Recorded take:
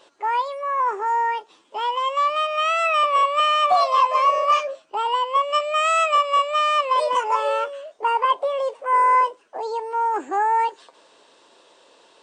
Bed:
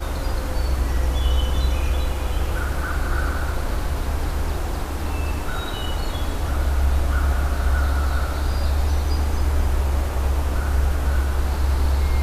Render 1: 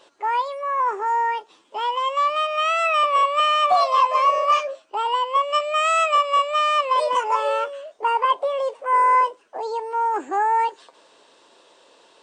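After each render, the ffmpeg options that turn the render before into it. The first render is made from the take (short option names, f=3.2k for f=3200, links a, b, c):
-filter_complex "[0:a]asettb=1/sr,asplit=3[a][b][c];[a]atrim=end=4.414[d];[b]atrim=start=4.41:end=6.02,asetpts=PTS-STARTPTS,afade=t=in:d=0.004:c=qsin,afade=t=out:st=1.606:d=0.004:c=qsin,equalizer=f=150:w=2.2:g=-12[e];[c]atrim=start=6.016[f];[d][e]acrossfade=d=0.004:c1=hsin:c2=qsin[g];[g][f]acrossfade=d=0.004:c1=qsin:c2=hsin"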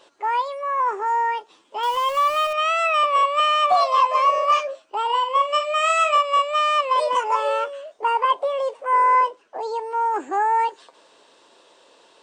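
-filter_complex "[0:a]asettb=1/sr,asplit=3[a][b][c];[a]atrim=end=1.834[d];[b]atrim=start=1.83:end=2.53,asetpts=PTS-STARTPTS,afade=t=in:d=0.004:c=qsin,afade=t=out:st=0.696:d=0.004:c=qsin,aeval=exprs='val(0)+0.5*0.0335*sgn(val(0))':c=same[e];[c]atrim=start=2.526[f];[d][e]acrossfade=d=0.004:c1=hsin:c2=qsin[g];[g][f]acrossfade=d=0.004:c1=qsin:c2=hsin,asettb=1/sr,asplit=3[h][i][j];[h]atrim=end=5.054[k];[i]atrim=start=5.05:end=6.18,asetpts=PTS-STARTPTS,afade=t=in:d=0.004:c=qsin,afade=t=out:st=1.126:d=0.004:c=qsin,asplit=2[l][m];[m]adelay=45,volume=-8dB[n];[l][n]amix=inputs=2:normalize=0,atrim=end_sample=49833[o];[j]atrim=start=6.176[p];[k][o]acrossfade=d=0.004:c1=hsin:c2=qsin[q];[q][p]acrossfade=d=0.004:c1=qsin:c2=hsin,asettb=1/sr,asplit=3[r][s][t];[r]atrim=end=8.944[u];[s]atrim=start=8.94:end=9.6,asetpts=PTS-STARTPTS,afade=t=in:d=0.004:c=qsin,afade=t=out:st=0.656:d=0.004:c=qsin,lowpass=7.3k[v];[t]atrim=start=9.596[w];[u][v]acrossfade=d=0.004:c1=hsin:c2=qsin[x];[x][w]acrossfade=d=0.004:c1=qsin:c2=hsin"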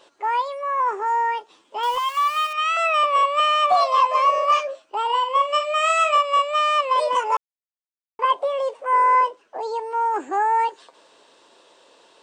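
-filter_complex "[0:a]asettb=1/sr,asplit=3[a][b][c];[a]atrim=end=1.984[d];[b]atrim=start=1.98:end=2.77,asetpts=PTS-STARTPTS,afade=t=in:d=0.004:c=qsin,afade=t=out:st=0.786:d=0.004:c=qsin,highpass=f=970:w=0.5412,highpass=f=970:w=1.3066[e];[c]atrim=start=2.766[f];[d][e]acrossfade=d=0.004:c1=hsin:c2=qsin[g];[g][f]acrossfade=d=0.004:c1=qsin:c2=hsin,asplit=3[h][i][j];[h]atrim=end=7.37,asetpts=PTS-STARTPTS,afade=t=out:st=7.366:d=0.004:c=hsin[k];[i]atrim=start=7.37:end=8.19,asetpts=PTS-STARTPTS,volume=0[l];[j]atrim=start=8.19,asetpts=PTS-STARTPTS,afade=t=in:d=0.004:c=hsin[m];[k][l][m]concat=n=3:v=0:a=1"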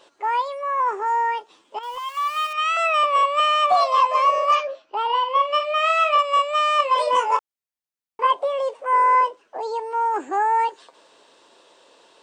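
-filter_complex "[0:a]asettb=1/sr,asplit=3[a][b][c];[a]atrim=end=4.554[d];[b]atrim=start=4.55:end=6.19,asetpts=PTS-STARTPTS,afade=t=in:d=0.004:c=qsin,afade=t=out:st=1.636:d=0.004:c=qsin,lowpass=f=5.5k:w=0.5412,lowpass=f=5.5k:w=1.3066[e];[c]atrim=start=6.186[f];[d][e]acrossfade=d=0.004:c1=hsin:c2=qsin[g];[g][f]acrossfade=d=0.004:c1=qsin:c2=hsin,asettb=1/sr,asplit=3[h][i][j];[h]atrim=end=6.774[k];[i]atrim=start=6.77:end=8.27,asetpts=PTS-STARTPTS,afade=t=in:d=0.004:c=qsin,afade=t=out:st=1.496:d=0.004:c=qsin,asplit=2[l][m];[m]adelay=22,volume=-4.5dB[n];[l][n]amix=inputs=2:normalize=0,atrim=end_sample=66150[o];[j]atrim=start=8.266[p];[k][o]acrossfade=d=0.004:c1=hsin:c2=qsin[q];[q][p]acrossfade=d=0.004:c1=qsin:c2=hsin,asplit=2[r][s];[r]atrim=end=1.79,asetpts=PTS-STARTPTS,afade=t=out:st=1.786:d=0.004:c=hsin:silence=0.237137[t];[s]atrim=start=1.79,asetpts=PTS-STARTPTS,afade=t=in:d=0.8:silence=0.237137[u];[t][u]concat=n=2:v=0:a=1"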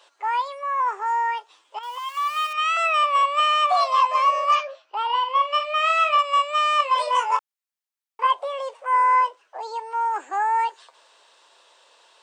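-af "highpass=760"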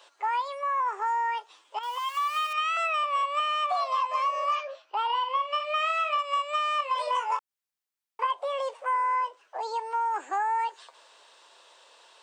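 -filter_complex "[0:a]acrossover=split=3800[a][b];[b]alimiter=level_in=9dB:limit=-24dB:level=0:latency=1:release=155,volume=-9dB[c];[a][c]amix=inputs=2:normalize=0,acompressor=threshold=-25dB:ratio=5"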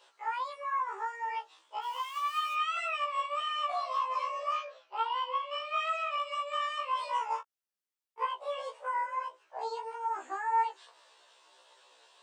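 -af "flanger=delay=17.5:depth=7:speed=1.7,afftfilt=real='re*1.73*eq(mod(b,3),0)':imag='im*1.73*eq(mod(b,3),0)':win_size=2048:overlap=0.75"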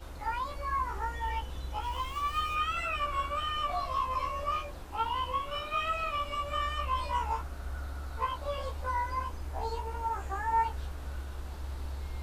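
-filter_complex "[1:a]volume=-18.5dB[a];[0:a][a]amix=inputs=2:normalize=0"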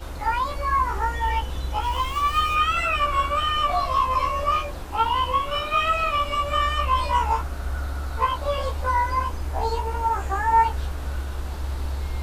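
-af "volume=10dB"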